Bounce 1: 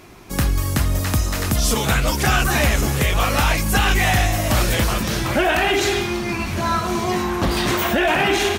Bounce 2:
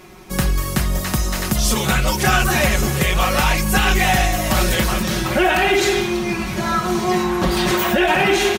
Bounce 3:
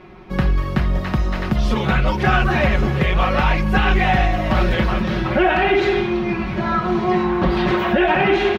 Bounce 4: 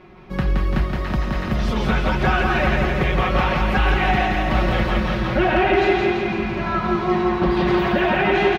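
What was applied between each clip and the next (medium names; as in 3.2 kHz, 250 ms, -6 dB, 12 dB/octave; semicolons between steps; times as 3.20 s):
comb 5.4 ms, depth 62%
distance through air 340 m; trim +1.5 dB
feedback delay 170 ms, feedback 60%, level -3 dB; trim -3.5 dB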